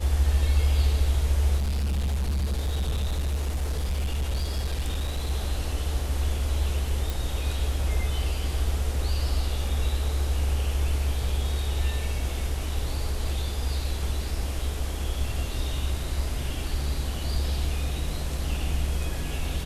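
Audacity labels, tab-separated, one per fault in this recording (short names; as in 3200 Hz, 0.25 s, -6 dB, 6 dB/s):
1.570000	5.310000	clipped -23 dBFS
7.100000	7.100000	pop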